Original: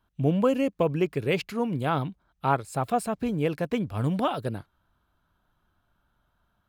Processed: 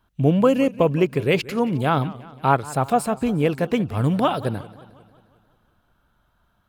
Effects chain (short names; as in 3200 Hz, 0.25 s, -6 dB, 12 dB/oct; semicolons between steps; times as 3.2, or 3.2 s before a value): warbling echo 0.179 s, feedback 56%, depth 139 cents, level -19 dB; gain +6 dB